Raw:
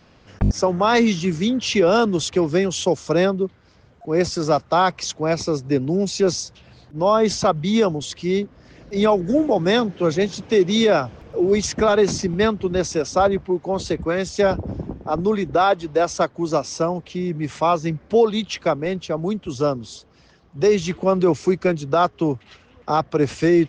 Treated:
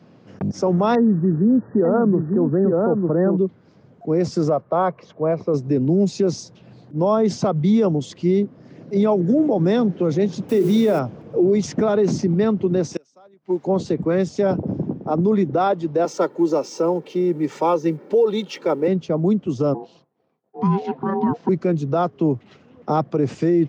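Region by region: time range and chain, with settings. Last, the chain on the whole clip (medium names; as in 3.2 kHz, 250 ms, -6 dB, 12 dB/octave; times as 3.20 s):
0.95–3.37 s: brick-wall FIR low-pass 1.9 kHz + delay 895 ms -6 dB
4.49–5.54 s: low-pass 1.6 kHz + bass shelf 270 Hz -8 dB + comb 1.8 ms, depth 37%
10.49–10.99 s: hum notches 60/120/180/240/300/360/420 Hz + word length cut 6-bit, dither triangular
12.94–13.67 s: tilt EQ +3.5 dB/octave + inverted gate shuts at -16 dBFS, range -32 dB
16.05–18.88 s: companding laws mixed up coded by mu + high-pass 200 Hz 24 dB/octave + comb 2.2 ms, depth 59%
19.74–21.49 s: expander -44 dBFS + ring modulator 590 Hz + distance through air 230 m
whole clip: tilt shelf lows +8 dB, about 780 Hz; peak limiter -10 dBFS; high-pass 130 Hz 24 dB/octave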